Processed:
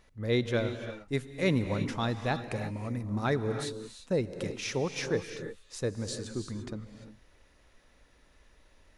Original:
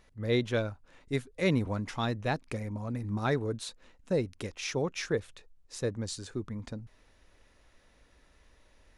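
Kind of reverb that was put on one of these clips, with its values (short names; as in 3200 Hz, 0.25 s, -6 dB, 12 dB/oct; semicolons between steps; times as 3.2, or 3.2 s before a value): non-linear reverb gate 0.37 s rising, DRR 7.5 dB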